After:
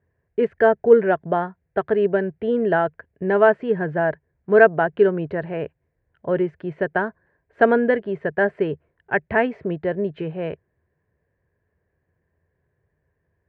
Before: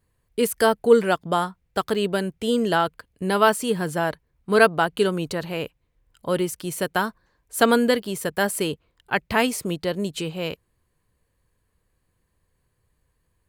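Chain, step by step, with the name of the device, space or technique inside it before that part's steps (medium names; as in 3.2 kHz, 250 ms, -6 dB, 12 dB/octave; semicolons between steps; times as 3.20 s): bass cabinet (cabinet simulation 68–2100 Hz, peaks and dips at 83 Hz +7 dB, 150 Hz +5 dB, 400 Hz +8 dB, 640 Hz +8 dB, 1.2 kHz -7 dB, 1.7 kHz +8 dB); trim -2 dB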